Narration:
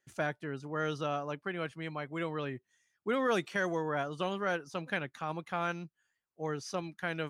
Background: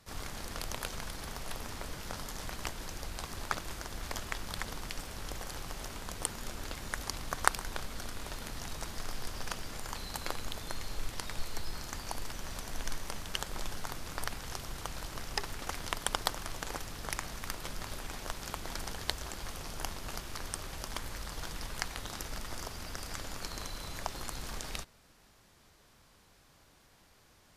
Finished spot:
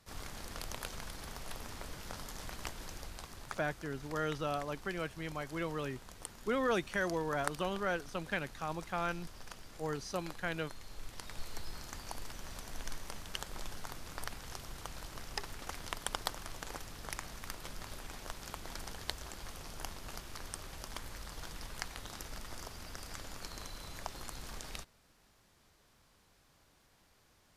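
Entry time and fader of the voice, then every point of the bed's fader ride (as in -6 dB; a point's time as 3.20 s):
3.40 s, -2.0 dB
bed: 2.93 s -4 dB
3.62 s -11 dB
10.80 s -11 dB
11.50 s -5 dB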